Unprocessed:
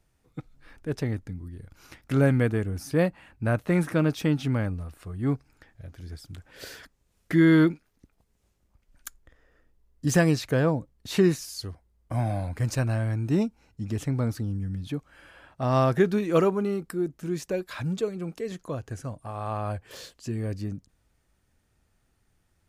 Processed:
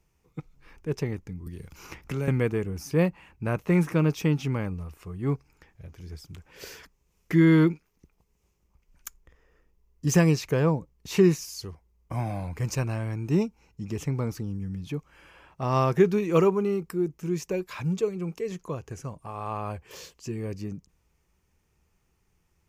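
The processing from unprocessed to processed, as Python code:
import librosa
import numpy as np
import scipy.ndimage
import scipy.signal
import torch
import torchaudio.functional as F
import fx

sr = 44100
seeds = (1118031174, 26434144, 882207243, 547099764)

y = fx.band_squash(x, sr, depth_pct=70, at=(1.46, 2.28))
y = fx.ripple_eq(y, sr, per_octave=0.77, db=7)
y = y * 10.0 ** (-1.0 / 20.0)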